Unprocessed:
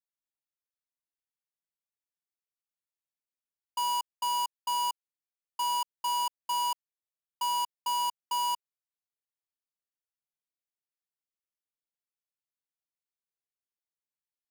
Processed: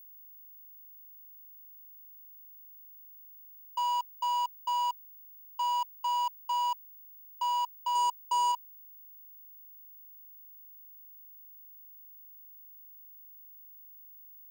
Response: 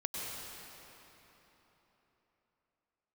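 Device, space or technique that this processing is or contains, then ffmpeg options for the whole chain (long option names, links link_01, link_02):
old television with a line whistle: -filter_complex "[0:a]asettb=1/sr,asplit=3[link_01][link_02][link_03];[link_01]atrim=end=7.954[link_04];[link_02]atrim=start=7.95:end=8.52,asetpts=PTS-STARTPTS,afade=type=in:duration=0.004:curve=qsin,afade=type=out:start_time=0.566:duration=0.004:curve=qsin,equalizer=frequency=125:width_type=o:width=1:gain=-4,equalizer=frequency=500:width_type=o:width=1:gain=11,equalizer=frequency=8000:width_type=o:width=1:gain=10[link_05];[link_03]atrim=start=8.516[link_06];[link_04][link_05]acrossfade=duration=0.004:curve1=hsin:curve2=qsin[link_07];[link_07][link_06]acrossfade=duration=0.004:curve1=qsin:curve2=hsin,highpass=frequency=230:width=0.5412,highpass=frequency=230:width=1.3066,equalizer=frequency=290:width_type=q:width=4:gain=5,equalizer=frequency=960:width_type=q:width=4:gain=5,equalizer=frequency=5500:width_type=q:width=4:gain=-8,lowpass=frequency=7300:width=0.5412,lowpass=frequency=7300:width=1.3066,aeval=exprs='val(0)+0.00562*sin(2*PI*15625*n/s)':channel_layout=same,volume=-4.5dB"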